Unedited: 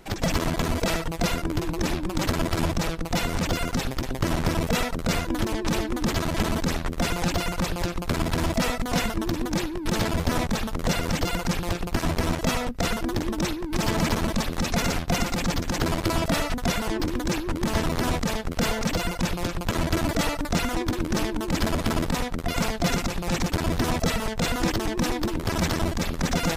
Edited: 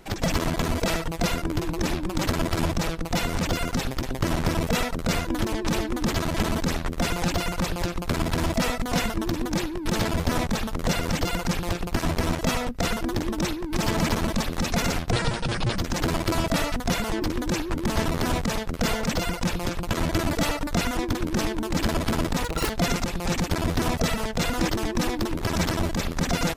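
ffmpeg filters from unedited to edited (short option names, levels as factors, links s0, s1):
-filter_complex "[0:a]asplit=5[s0][s1][s2][s3][s4];[s0]atrim=end=15.114[s5];[s1]atrim=start=15.11:end=15.56,asetpts=PTS-STARTPTS,asetrate=29547,aresample=44100,atrim=end_sample=29619,asetpts=PTS-STARTPTS[s6];[s2]atrim=start=15.556:end=22.224[s7];[s3]atrim=start=22.22:end=22.72,asetpts=PTS-STARTPTS,asetrate=86436,aresample=44100[s8];[s4]atrim=start=22.716[s9];[s5][s6]acrossfade=d=0.004:c1=hsin:c2=hsin[s10];[s10][s7]acrossfade=d=0.004:c1=hsin:c2=hsin[s11];[s11][s8]acrossfade=d=0.004:c1=hsin:c2=hsin[s12];[s12][s9]acrossfade=d=0.004:c1=hsin:c2=hsin"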